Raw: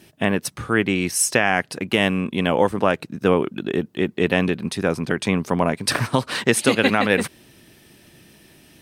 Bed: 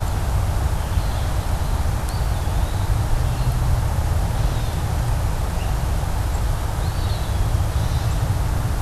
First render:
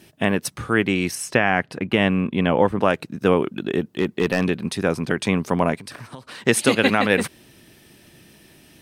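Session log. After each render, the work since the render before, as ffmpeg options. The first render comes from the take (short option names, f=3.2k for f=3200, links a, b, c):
-filter_complex "[0:a]asettb=1/sr,asplit=3[a][b][c];[a]atrim=end=1.154[d];[b]atrim=start=1.15:end=2.81,asetpts=PTS-STARTPTS,afade=t=in:d=0.004:c=qsin,afade=t=out:st=1.656:d=0.004:c=qsin,bass=f=250:g=3,treble=f=4k:g=-12[e];[c]atrim=start=2.806[f];[d][e]acrossfade=d=0.004:c1=hsin:c2=qsin[g];[g][f]acrossfade=d=0.004:c1=qsin:c2=hsin,asettb=1/sr,asplit=3[h][i][j];[h]atrim=end=3.964[k];[i]atrim=start=3.96:end=4.45,asetpts=PTS-STARTPTS,afade=t=in:d=0.004:c=qsin,afade=t=out:st=0.486:d=0.004:c=qsin,asoftclip=type=hard:threshold=-12dB[l];[j]atrim=start=4.446[m];[k][l]acrossfade=d=0.004:c1=hsin:c2=qsin[n];[n][m]acrossfade=d=0.004:c1=qsin:c2=hsin,asettb=1/sr,asplit=3[o][p][q];[o]atrim=end=5.754[r];[p]atrim=start=5.75:end=6.45,asetpts=PTS-STARTPTS,afade=t=in:d=0.004:c=qsin,afade=t=out:st=0.696:d=0.004:c=qsin,acompressor=threshold=-37dB:ratio=4:attack=3.2:release=140:knee=1:detection=peak[s];[q]atrim=start=6.446[t];[r][s]acrossfade=d=0.004:c1=hsin:c2=qsin[u];[u][t]acrossfade=d=0.004:c1=qsin:c2=hsin"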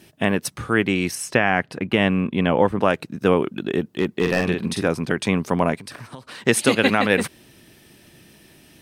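-filter_complex "[0:a]asettb=1/sr,asplit=3[a][b][c];[a]atrim=end=4.214[d];[b]atrim=start=4.21:end=4.88,asetpts=PTS-STARTPTS,afade=t=in:d=0.004:c=qsin,afade=t=out:st=0.666:d=0.004:c=qsin,asplit=2[e][f];[f]adelay=46,volume=-4.5dB[g];[e][g]amix=inputs=2:normalize=0,atrim=end_sample=29547[h];[c]atrim=start=4.876[i];[d][h]acrossfade=d=0.004:c1=hsin:c2=qsin[j];[j][i]acrossfade=d=0.004:c1=qsin:c2=hsin"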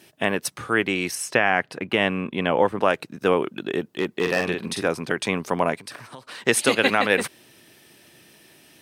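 -af "highpass=140,equalizer=f=200:w=0.94:g=-6.5"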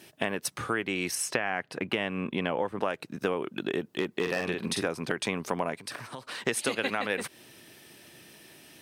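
-af "acompressor=threshold=-26dB:ratio=5"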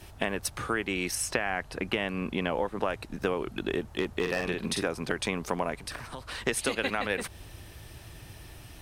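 -filter_complex "[1:a]volume=-27.5dB[a];[0:a][a]amix=inputs=2:normalize=0"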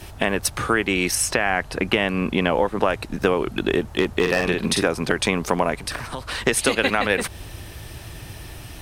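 -af "volume=9.5dB,alimiter=limit=-2dB:level=0:latency=1"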